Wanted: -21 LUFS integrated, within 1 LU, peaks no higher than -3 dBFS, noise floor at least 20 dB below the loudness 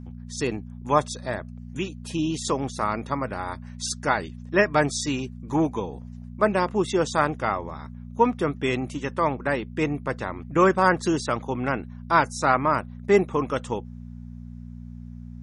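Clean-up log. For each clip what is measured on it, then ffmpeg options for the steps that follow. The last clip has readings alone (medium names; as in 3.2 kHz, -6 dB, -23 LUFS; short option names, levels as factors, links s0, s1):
hum 60 Hz; highest harmonic 240 Hz; hum level -37 dBFS; loudness -25.0 LUFS; peak level -4.5 dBFS; loudness target -21.0 LUFS
-> -af "bandreject=f=60:t=h:w=4,bandreject=f=120:t=h:w=4,bandreject=f=180:t=h:w=4,bandreject=f=240:t=h:w=4"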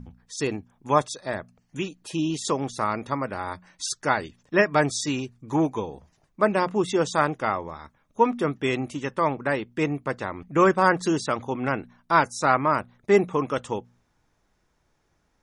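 hum not found; loudness -25.0 LUFS; peak level -4.5 dBFS; loudness target -21.0 LUFS
-> -af "volume=1.58,alimiter=limit=0.708:level=0:latency=1"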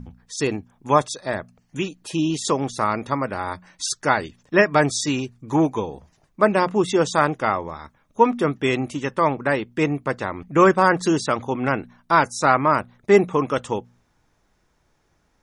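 loudness -21.5 LUFS; peak level -3.0 dBFS; noise floor -66 dBFS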